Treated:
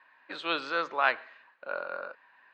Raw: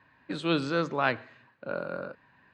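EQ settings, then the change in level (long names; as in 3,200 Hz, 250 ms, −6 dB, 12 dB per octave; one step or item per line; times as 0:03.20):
high-pass filter 780 Hz 12 dB per octave
high-frequency loss of the air 150 metres
+4.0 dB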